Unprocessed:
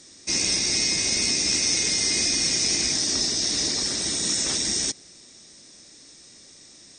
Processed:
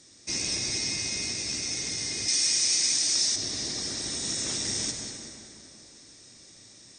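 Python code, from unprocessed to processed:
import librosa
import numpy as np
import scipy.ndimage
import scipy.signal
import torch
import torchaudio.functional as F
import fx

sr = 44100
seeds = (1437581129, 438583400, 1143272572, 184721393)

y = fx.peak_eq(x, sr, hz=110.0, db=7.5, octaves=0.49)
y = fx.echo_feedback(y, sr, ms=187, feedback_pct=57, wet_db=-14)
y = fx.rev_plate(y, sr, seeds[0], rt60_s=2.6, hf_ratio=0.55, predelay_ms=105, drr_db=4.0)
y = fx.rider(y, sr, range_db=10, speed_s=2.0)
y = fx.tilt_eq(y, sr, slope=3.0, at=(2.28, 3.36))
y = y * librosa.db_to_amplitude(-9.0)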